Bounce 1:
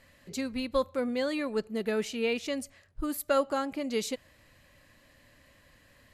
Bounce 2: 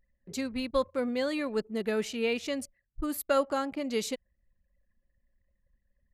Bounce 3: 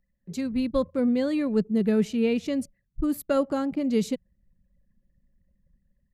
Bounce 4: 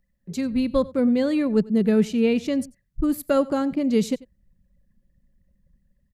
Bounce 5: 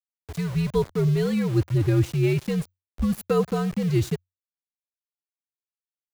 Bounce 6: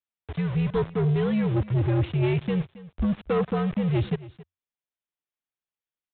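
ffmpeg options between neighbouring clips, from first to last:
-af "anlmdn=0.01"
-filter_complex "[0:a]equalizer=f=170:w=1.8:g=11.5,acrossover=split=490|6900[a][b][c];[a]dynaudnorm=f=310:g=3:m=9dB[d];[d][b][c]amix=inputs=3:normalize=0,volume=-3dB"
-af "aecho=1:1:92:0.0841,volume=3.5dB"
-af "aeval=exprs='val(0)*gte(abs(val(0)),0.0251)':c=same,afreqshift=-92,volume=-1.5dB"
-af "aresample=8000,asoftclip=type=tanh:threshold=-20.5dB,aresample=44100,aecho=1:1:273:0.119,volume=2dB"

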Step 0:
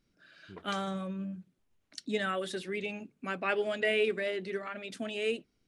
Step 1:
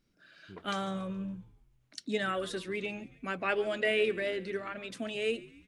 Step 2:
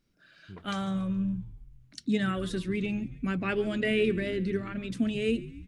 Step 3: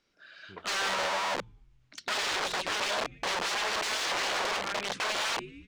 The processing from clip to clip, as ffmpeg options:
-filter_complex "[0:a]asplit=5[a][b][c][d][e];[b]adelay=140,afreqshift=-80,volume=-20dB[f];[c]adelay=280,afreqshift=-160,volume=-25.8dB[g];[d]adelay=420,afreqshift=-240,volume=-31.7dB[h];[e]adelay=560,afreqshift=-320,volume=-37.5dB[i];[a][f][g][h][i]amix=inputs=5:normalize=0"
-af "asubboost=boost=12:cutoff=200"
-filter_complex "[0:a]aeval=exprs='(mod(35.5*val(0)+1,2)-1)/35.5':c=same,acrossover=split=400 7100:gain=0.141 1 0.0794[a][b][c];[a][b][c]amix=inputs=3:normalize=0,volume=7dB"

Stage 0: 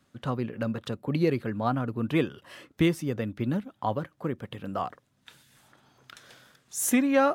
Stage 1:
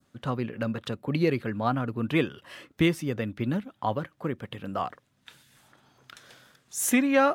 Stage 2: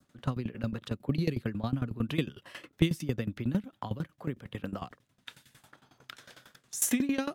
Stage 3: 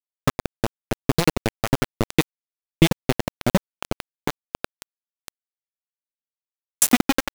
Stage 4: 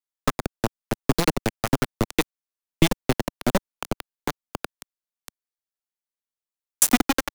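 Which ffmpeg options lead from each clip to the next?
-af "adynamicequalizer=threshold=0.00562:dfrequency=2400:dqfactor=0.8:tfrequency=2400:tqfactor=0.8:attack=5:release=100:ratio=0.375:range=2:mode=boostabove:tftype=bell"
-filter_complex "[0:a]acrossover=split=280|3000[a][b][c];[b]acompressor=threshold=-40dB:ratio=4[d];[a][d][c]amix=inputs=3:normalize=0,aeval=exprs='val(0)*pow(10,-18*if(lt(mod(11*n/s,1),2*abs(11)/1000),1-mod(11*n/s,1)/(2*abs(11)/1000),(mod(11*n/s,1)-2*abs(11)/1000)/(1-2*abs(11)/1000))/20)':c=same,volume=5.5dB"
-af "aeval=exprs='val(0)*gte(abs(val(0)),0.0631)':c=same,alimiter=level_in=12dB:limit=-1dB:release=50:level=0:latency=1"
-filter_complex "[0:a]acrossover=split=170|540|2700[a][b][c][d];[a]aeval=exprs='abs(val(0))':c=same[e];[c]bandpass=f=1.1k:t=q:w=0.56:csg=0[f];[e][b][f][d]amix=inputs=4:normalize=0"

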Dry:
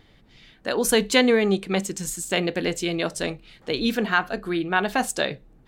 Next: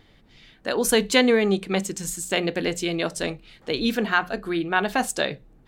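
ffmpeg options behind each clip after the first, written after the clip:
-af "bandreject=f=60:t=h:w=6,bandreject=f=120:t=h:w=6,bandreject=f=180:t=h:w=6"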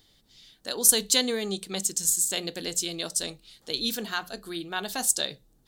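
-af "aexciter=amount=7.1:drive=3.5:freq=3.4k,volume=-10.5dB"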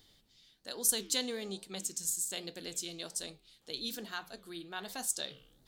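-af "areverse,acompressor=mode=upward:threshold=-45dB:ratio=2.5,areverse,flanger=delay=8:depth=8.9:regen=-88:speed=1.2:shape=sinusoidal,volume=-5.5dB"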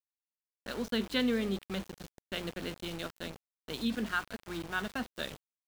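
-af "highpass=f=110:w=0.5412,highpass=f=110:w=1.3066,equalizer=f=150:t=q:w=4:g=7,equalizer=f=230:t=q:w=4:g=8,equalizer=f=780:t=q:w=4:g=-5,equalizer=f=1.4k:t=q:w=4:g=7,lowpass=f=3.1k:w=0.5412,lowpass=f=3.1k:w=1.3066,aeval=exprs='val(0)+0.00158*(sin(2*PI*50*n/s)+sin(2*PI*2*50*n/s)/2+sin(2*PI*3*50*n/s)/3+sin(2*PI*4*50*n/s)/4+sin(2*PI*5*50*n/s)/5)':c=same,aeval=exprs='val(0)*gte(abs(val(0)),0.00531)':c=same,volume=5.5dB"

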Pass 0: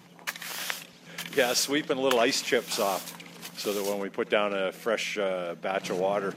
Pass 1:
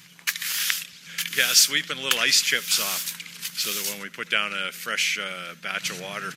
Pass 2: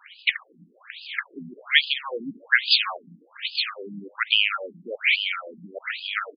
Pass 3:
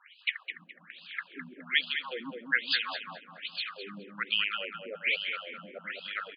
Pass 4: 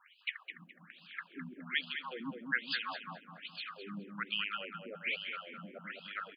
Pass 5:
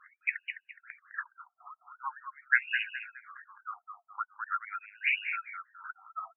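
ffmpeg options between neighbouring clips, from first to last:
-af "firequalizer=gain_entry='entry(150,0);entry(260,-10);entry(760,-13);entry(1400,5);entry(2200,8);entry(4200,10);entry(14000,12)':delay=0.05:min_phase=1"
-filter_complex "[0:a]asplit=2[a][b];[b]adelay=198.3,volume=-21dB,highshelf=f=4k:g=-4.46[c];[a][c]amix=inputs=2:normalize=0,afftfilt=real='re*between(b*sr/1024,230*pow(3600/230,0.5+0.5*sin(2*PI*1.2*pts/sr))/1.41,230*pow(3600/230,0.5+0.5*sin(2*PI*1.2*pts/sr))*1.41)':imag='im*between(b*sr/1024,230*pow(3600/230,0.5+0.5*sin(2*PI*1.2*pts/sr))/1.41,230*pow(3600/230,0.5+0.5*sin(2*PI*1.2*pts/sr))*1.41)':win_size=1024:overlap=0.75,volume=8dB"
-filter_complex "[0:a]lowpass=4k,asplit=2[a][b];[b]adelay=209,lowpass=f=1.7k:p=1,volume=-4dB,asplit=2[c][d];[d]adelay=209,lowpass=f=1.7k:p=1,volume=0.47,asplit=2[e][f];[f]adelay=209,lowpass=f=1.7k:p=1,volume=0.47,asplit=2[g][h];[h]adelay=209,lowpass=f=1.7k:p=1,volume=0.47,asplit=2[i][j];[j]adelay=209,lowpass=f=1.7k:p=1,volume=0.47,asplit=2[k][l];[l]adelay=209,lowpass=f=1.7k:p=1,volume=0.47[m];[a][c][e][g][i][k][m]amix=inputs=7:normalize=0,volume=-8dB"
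-af "equalizer=f=125:t=o:w=1:g=4,equalizer=f=500:t=o:w=1:g=-9,equalizer=f=2k:t=o:w=1:g=-7,equalizer=f=4k:t=o:w=1:g=-11,volume=2dB"
-af "afftfilt=real='re*between(b*sr/1024,940*pow(2100/940,0.5+0.5*sin(2*PI*0.44*pts/sr))/1.41,940*pow(2100/940,0.5+0.5*sin(2*PI*0.44*pts/sr))*1.41)':imag='im*between(b*sr/1024,940*pow(2100/940,0.5+0.5*sin(2*PI*0.44*pts/sr))/1.41,940*pow(2100/940,0.5+0.5*sin(2*PI*0.44*pts/sr))*1.41)':win_size=1024:overlap=0.75,volume=8.5dB"

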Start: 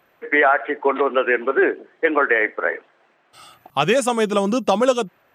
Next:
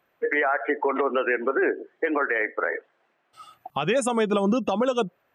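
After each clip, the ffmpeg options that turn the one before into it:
-af "afftdn=nr=18:nf=-32,acompressor=threshold=-26dB:ratio=6,alimiter=limit=-22.5dB:level=0:latency=1:release=79,volume=8.5dB"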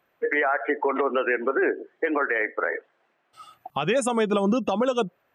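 -af anull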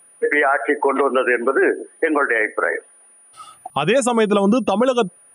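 -af "aeval=exprs='val(0)+0.002*sin(2*PI*9600*n/s)':c=same,volume=6.5dB"

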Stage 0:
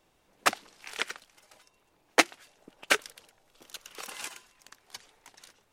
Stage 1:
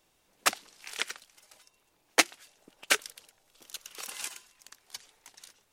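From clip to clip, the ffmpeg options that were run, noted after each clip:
-af "highshelf=f=2.9k:g=9,volume=-4.5dB"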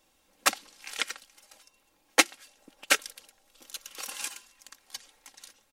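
-af "aecho=1:1:3.7:0.5,volume=1dB"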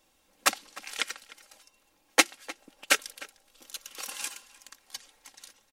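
-filter_complex "[0:a]asplit=2[a][b];[b]adelay=303.2,volume=-18dB,highshelf=f=4k:g=-6.82[c];[a][c]amix=inputs=2:normalize=0"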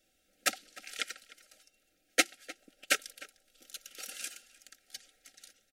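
-af "asuperstop=centerf=990:order=20:qfactor=2,volume=-5dB"

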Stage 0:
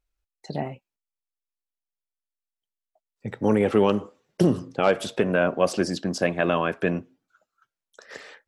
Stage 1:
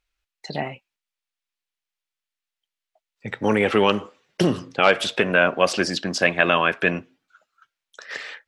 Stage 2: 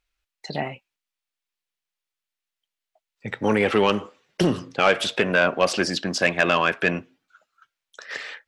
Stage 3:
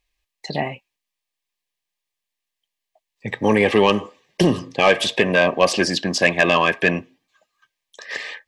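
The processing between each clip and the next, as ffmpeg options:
-af "equalizer=f=2.6k:w=0.43:g=13,volume=-1.5dB"
-af "asoftclip=type=tanh:threshold=-7.5dB"
-af "asuperstop=centerf=1400:order=20:qfactor=4.7,volume=4dB"

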